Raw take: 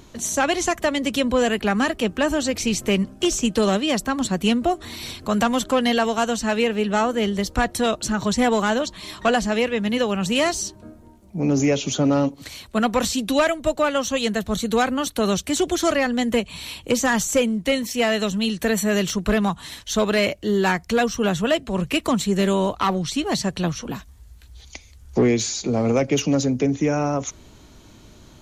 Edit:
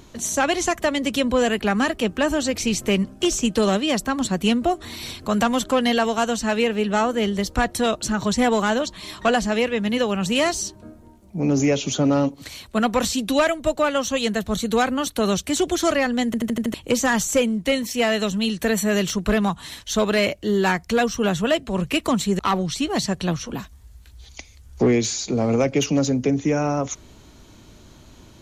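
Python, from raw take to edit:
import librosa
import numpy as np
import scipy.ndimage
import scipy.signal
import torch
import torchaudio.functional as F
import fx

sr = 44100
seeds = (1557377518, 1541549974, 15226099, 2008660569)

y = fx.edit(x, sr, fx.stutter_over(start_s=16.26, slice_s=0.08, count=6),
    fx.cut(start_s=22.39, length_s=0.36), tone=tone)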